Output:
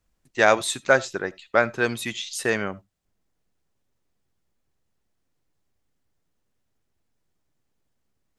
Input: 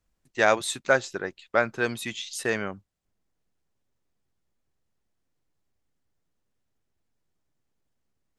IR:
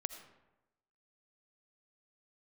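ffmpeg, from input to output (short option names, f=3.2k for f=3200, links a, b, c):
-filter_complex "[0:a]asplit=2[a][b];[1:a]atrim=start_sample=2205,atrim=end_sample=3969[c];[b][c]afir=irnorm=-1:irlink=0,volume=-1.5dB[d];[a][d]amix=inputs=2:normalize=0,volume=-1.5dB"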